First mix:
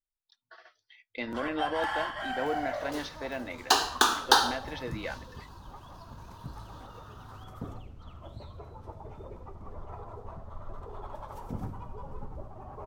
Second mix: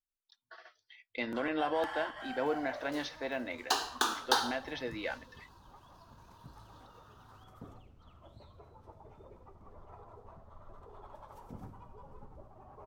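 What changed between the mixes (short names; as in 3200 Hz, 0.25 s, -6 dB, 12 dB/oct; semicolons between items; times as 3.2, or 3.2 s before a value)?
first sound -8.5 dB; second sound -7.5 dB; master: add low shelf 150 Hz -4.5 dB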